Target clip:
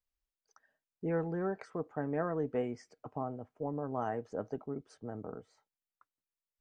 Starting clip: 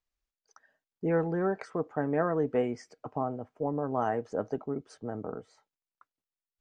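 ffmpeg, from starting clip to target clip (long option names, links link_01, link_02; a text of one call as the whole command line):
ffmpeg -i in.wav -af "lowshelf=frequency=150:gain=4.5,volume=-6.5dB" out.wav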